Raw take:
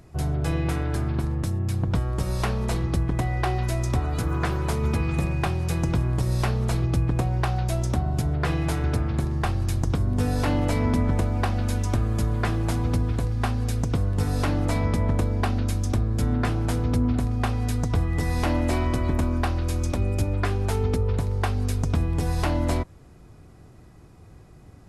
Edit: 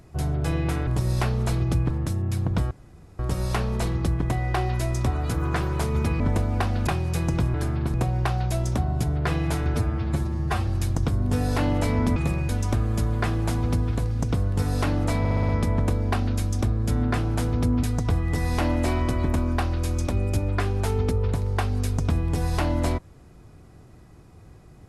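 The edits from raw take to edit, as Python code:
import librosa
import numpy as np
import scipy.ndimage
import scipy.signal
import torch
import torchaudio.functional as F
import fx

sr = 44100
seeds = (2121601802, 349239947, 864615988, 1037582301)

y = fx.edit(x, sr, fx.swap(start_s=0.87, length_s=0.4, other_s=6.09, other_length_s=1.03),
    fx.insert_room_tone(at_s=2.08, length_s=0.48),
    fx.swap(start_s=5.09, length_s=0.33, other_s=11.03, other_length_s=0.67),
    fx.stretch_span(start_s=8.92, length_s=0.62, factor=1.5),
    fx.cut(start_s=13.4, length_s=0.4),
    fx.stutter(start_s=14.8, slice_s=0.06, count=6),
    fx.cut(start_s=17.14, length_s=0.54), tone=tone)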